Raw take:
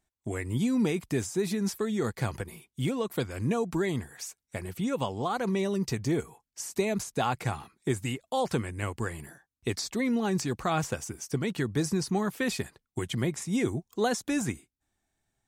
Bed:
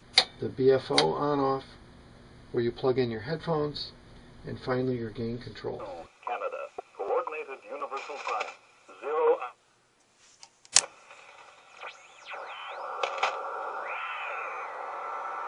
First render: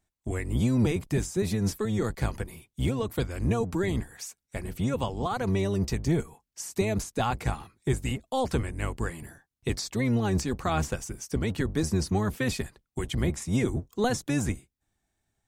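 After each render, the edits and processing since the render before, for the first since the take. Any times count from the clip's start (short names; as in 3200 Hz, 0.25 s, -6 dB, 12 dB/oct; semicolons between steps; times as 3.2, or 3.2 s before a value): octaver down 1 oct, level 0 dB; short-mantissa float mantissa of 8-bit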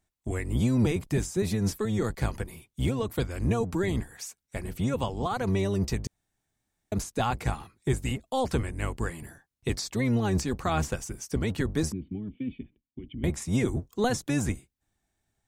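6.07–6.92 room tone; 11.92–13.24 vocal tract filter i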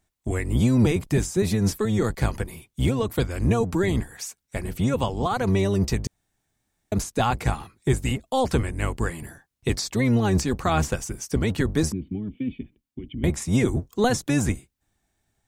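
gain +5 dB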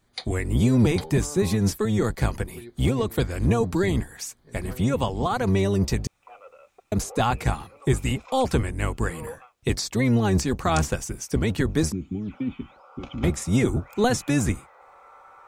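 add bed -14 dB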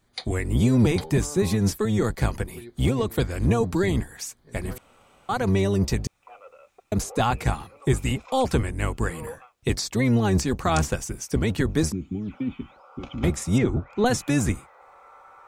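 4.78–5.29 room tone; 13.58–14.06 air absorption 170 m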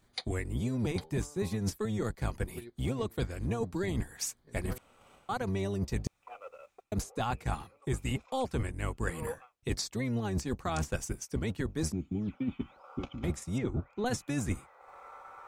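transient shaper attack +2 dB, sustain -6 dB; reverse; compressor 6:1, threshold -30 dBFS, peak gain reduction 15 dB; reverse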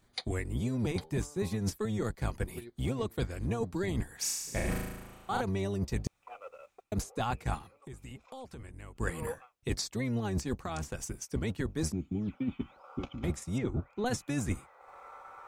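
4.19–5.41 flutter echo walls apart 6.3 m, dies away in 1.1 s; 7.58–8.96 compressor 4:1, threshold -45 dBFS; 10.62–11.23 compressor, threshold -32 dBFS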